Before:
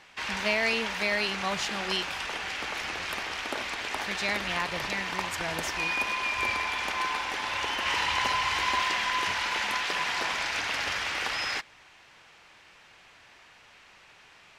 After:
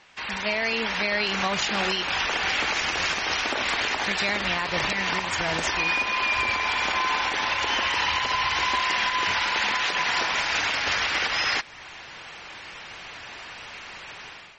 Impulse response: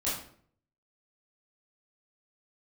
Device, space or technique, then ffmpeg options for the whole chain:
low-bitrate web radio: -filter_complex "[0:a]asettb=1/sr,asplit=3[link_01][link_02][link_03];[link_01]atrim=end=2.684[link_04];[link_02]atrim=start=2.68:end=3.43,asetpts=PTS-STARTPTS,afade=type=in:duration=0.004:curve=qsin,afade=type=out:start_time=0.746:duration=0.004:curve=qsin,equalizer=frequency=5900:width=1.6:gain=4[link_05];[link_03]atrim=start=3.426[link_06];[link_04][link_05]acrossfade=duration=0.004:curve1=hsin:curve2=qsin[link_07];[link_07][link_06]acrossfade=duration=0.004:curve1=qsin:curve2=hsin,dynaudnorm=framelen=680:gausssize=3:maxgain=15dB,alimiter=limit=-14.5dB:level=0:latency=1:release=354" -ar 48000 -c:a libmp3lame -b:a 32k

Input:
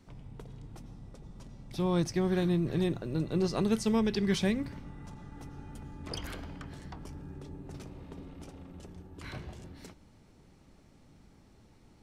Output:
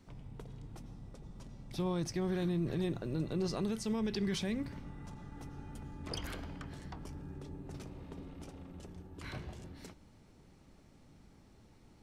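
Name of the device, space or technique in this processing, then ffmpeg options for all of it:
stacked limiters: -af "alimiter=limit=-19.5dB:level=0:latency=1:release=326,alimiter=level_in=0.5dB:limit=-24dB:level=0:latency=1:release=33,volume=-0.5dB,volume=-1.5dB"

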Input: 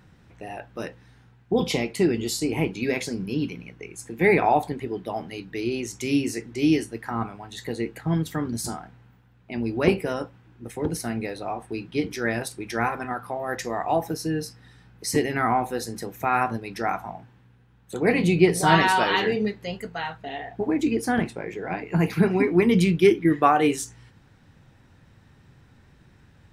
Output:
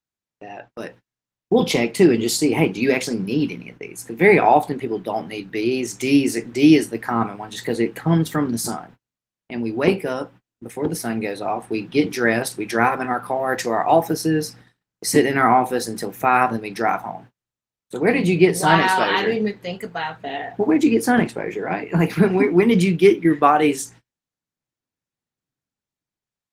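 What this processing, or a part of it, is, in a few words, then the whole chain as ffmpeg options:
video call: -af "highpass=150,dynaudnorm=framelen=400:gausssize=7:maxgain=11dB,agate=range=-40dB:threshold=-42dB:ratio=16:detection=peak" -ar 48000 -c:a libopus -b:a 20k

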